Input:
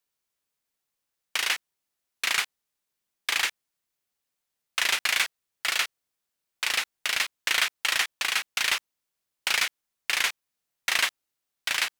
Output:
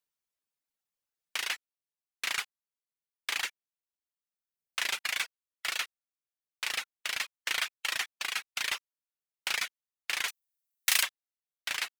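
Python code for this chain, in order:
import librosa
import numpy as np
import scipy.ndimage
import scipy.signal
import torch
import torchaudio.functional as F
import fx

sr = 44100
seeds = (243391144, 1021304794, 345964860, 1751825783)

y = fx.dereverb_blind(x, sr, rt60_s=1.3)
y = fx.riaa(y, sr, side='recording', at=(10.28, 11.03))
y = y * librosa.db_to_amplitude(-6.0)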